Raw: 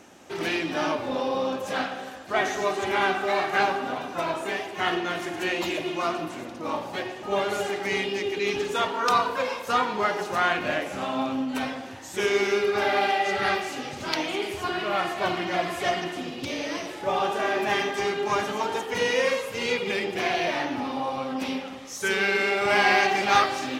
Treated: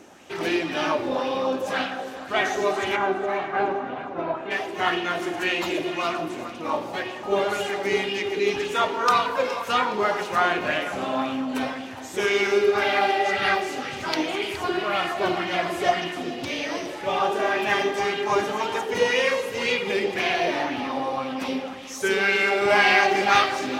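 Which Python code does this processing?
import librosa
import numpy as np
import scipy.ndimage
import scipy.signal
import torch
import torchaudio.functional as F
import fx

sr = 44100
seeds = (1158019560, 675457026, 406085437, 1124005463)

y = fx.spacing_loss(x, sr, db_at_10k=37, at=(2.95, 4.5), fade=0.02)
y = fx.echo_feedback(y, sr, ms=417, feedback_pct=38, wet_db=-15.0)
y = fx.bell_lfo(y, sr, hz=1.9, low_hz=330.0, high_hz=3100.0, db=7)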